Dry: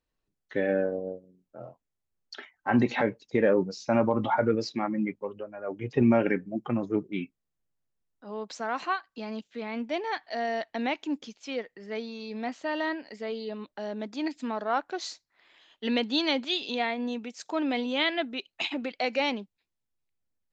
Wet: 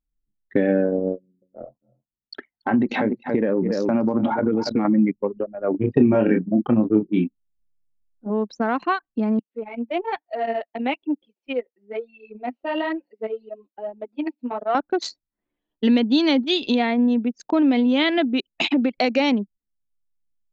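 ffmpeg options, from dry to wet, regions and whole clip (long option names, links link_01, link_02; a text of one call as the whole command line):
ffmpeg -i in.wav -filter_complex "[0:a]asettb=1/sr,asplit=3[link_01][link_02][link_03];[link_01]atrim=end=1.144[link_04];[link_02]atrim=start=1.14:end=4.85,asetpts=PTS-STARTPTS,afade=type=in:duration=0.004:curve=qsin,afade=type=out:start_time=3.706:duration=0.004:curve=qsin,highpass=frequency=120:poles=1,aecho=1:1:282:0.251,atrim=end_sample=163611,acompressor=threshold=-30dB:ratio=3:attack=3.2:release=140:knee=1:detection=peak[link_05];[link_03]atrim=start=4.846[link_06];[link_04][link_05]acrossfade=duration=0.004:curve1=hsin:curve2=qsin[link_07];[link_07][link_06]acrossfade=duration=0.004:curve1=qsin:curve2=hsin,asettb=1/sr,asplit=3[link_08][link_09][link_10];[link_08]atrim=end=5.714[link_11];[link_09]atrim=start=5.71:end=8.3,asetpts=PTS-STARTPTS,afade=type=in:duration=0.004:curve=qsin,afade=type=out:start_time=2.586:duration=0.004:curve=qsin,bandreject=frequency=2100:width=6.3,asplit=2[link_12][link_13];[link_13]adelay=28,volume=-4dB[link_14];[link_12][link_14]amix=inputs=2:normalize=0,atrim=end_sample=114219[link_15];[link_10]atrim=start=8.296[link_16];[link_11][link_15]acrossfade=duration=0.004:curve1=hsin:curve2=qsin[link_17];[link_17][link_16]acrossfade=duration=0.004:curve1=qsin:curve2=hsin,asettb=1/sr,asplit=3[link_18][link_19][link_20];[link_18]atrim=end=9.394[link_21];[link_19]atrim=start=9.39:end=14.75,asetpts=PTS-STARTPTS,afade=type=in:duration=0.004:curve=qsin,afade=type=out:start_time=5.356:duration=0.004:curve=qsin,highpass=450,equalizer=frequency=1100:width_type=q:width=4:gain=-3,equalizer=frequency=1700:width_type=q:width=4:gain=-5,equalizer=frequency=2700:width_type=q:width=4:gain=6,lowpass=frequency=5700:width=0.5412,lowpass=frequency=5700:width=1.3066,flanger=delay=5.8:depth=6.9:regen=17:speed=1.1:shape=sinusoidal,acrossover=split=3500[link_22][link_23];[link_23]acompressor=threshold=-57dB:ratio=4:attack=1:release=60[link_24];[link_22][link_24]amix=inputs=2:normalize=0[link_25];[link_20]atrim=start=14.746[link_26];[link_21][link_25]acrossfade=duration=0.004:curve1=hsin:curve2=qsin[link_27];[link_27][link_26]acrossfade=duration=0.004:curve1=qsin:curve2=hsin,asettb=1/sr,asplit=3[link_28][link_29][link_30];[link_28]atrim=end=18.984[link_31];[link_29]atrim=start=18.98:end=19.4,asetpts=PTS-STARTPTS,afade=type=in:duration=0.004:curve=qsin,afade=type=out:start_time=0.416:duration=0.004:curve=qsin,highshelf=frequency=6500:gain=6,acompressor=mode=upward:threshold=-45dB:ratio=2.5:attack=3.2:release=140:knee=2.83:detection=peak[link_32];[link_30]atrim=start=19.396[link_33];[link_31][link_32]acrossfade=duration=0.004:curve1=hsin:curve2=qsin[link_34];[link_34][link_33]acrossfade=duration=0.004:curve1=qsin:curve2=hsin,anlmdn=2.51,equalizer=frequency=240:width=0.89:gain=10.5,acompressor=threshold=-27dB:ratio=2.5,volume=9dB" out.wav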